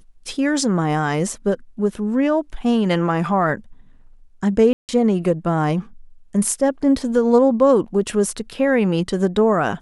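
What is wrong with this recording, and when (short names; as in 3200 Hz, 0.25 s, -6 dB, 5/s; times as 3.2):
4.73–4.89 gap 0.158 s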